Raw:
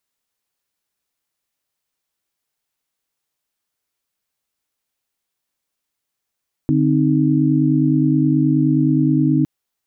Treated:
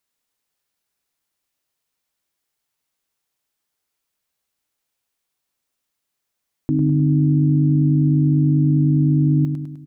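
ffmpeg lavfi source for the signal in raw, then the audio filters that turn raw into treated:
-f lavfi -i "aevalsrc='0.141*(sin(2*PI*146.83*t)+sin(2*PI*261.63*t)+sin(2*PI*311.13*t))':duration=2.76:sample_rate=44100"
-filter_complex "[0:a]alimiter=limit=-11.5dB:level=0:latency=1:release=19,asplit=2[link_01][link_02];[link_02]aecho=0:1:102|204|306|408|510|612|714:0.447|0.241|0.13|0.0703|0.038|0.0205|0.0111[link_03];[link_01][link_03]amix=inputs=2:normalize=0"

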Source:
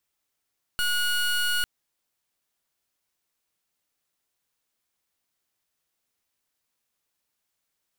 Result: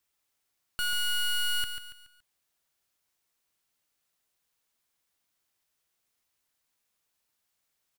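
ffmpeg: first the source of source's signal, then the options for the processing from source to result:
-f lavfi -i "aevalsrc='0.0596*(2*lt(mod(1450*t,1),0.23)-1)':duration=0.85:sample_rate=44100"
-filter_complex "[0:a]equalizer=frequency=290:width=0.57:gain=-2,asoftclip=type=hard:threshold=-28.5dB,asplit=2[link_01][link_02];[link_02]aecho=0:1:141|282|423|564:0.376|0.143|0.0543|0.0206[link_03];[link_01][link_03]amix=inputs=2:normalize=0"

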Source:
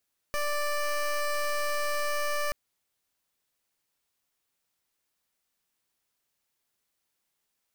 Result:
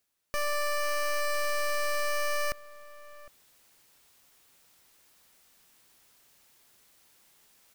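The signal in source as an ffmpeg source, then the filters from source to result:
-f lavfi -i "aevalsrc='0.0376*(2*lt(mod(588*t,1),0.16)-1)':duration=2.18:sample_rate=44100"
-filter_complex "[0:a]areverse,acompressor=mode=upward:threshold=-47dB:ratio=2.5,areverse,asplit=2[link_01][link_02];[link_02]adelay=758,volume=-18dB,highshelf=frequency=4000:gain=-17.1[link_03];[link_01][link_03]amix=inputs=2:normalize=0"

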